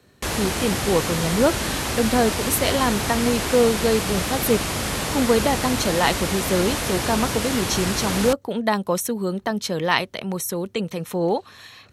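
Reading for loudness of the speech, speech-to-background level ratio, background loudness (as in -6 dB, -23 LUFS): -23.0 LUFS, 1.5 dB, -24.5 LUFS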